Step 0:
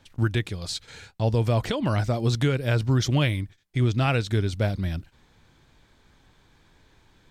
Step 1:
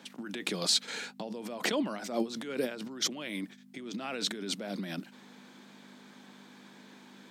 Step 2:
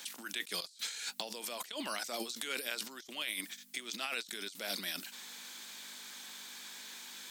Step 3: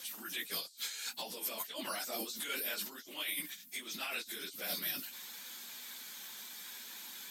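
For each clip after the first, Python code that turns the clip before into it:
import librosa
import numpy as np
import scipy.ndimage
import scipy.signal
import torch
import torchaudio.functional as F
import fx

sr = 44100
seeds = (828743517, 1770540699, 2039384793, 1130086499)

y1 = fx.over_compress(x, sr, threshold_db=-31.0, ratio=-1.0)
y1 = fx.add_hum(y1, sr, base_hz=50, snr_db=12)
y1 = scipy.signal.sosfilt(scipy.signal.butter(8, 190.0, 'highpass', fs=sr, output='sos'), y1)
y2 = np.diff(y1, prepend=0.0)
y2 = fx.over_compress(y2, sr, threshold_db=-53.0, ratio=-1.0)
y2 = F.gain(torch.from_numpy(y2), 9.5).numpy()
y3 = fx.phase_scramble(y2, sr, seeds[0], window_ms=50)
y3 = fx.peak_eq(y3, sr, hz=13000.0, db=12.5, octaves=0.34)
y3 = F.gain(torch.from_numpy(y3), -1.5).numpy()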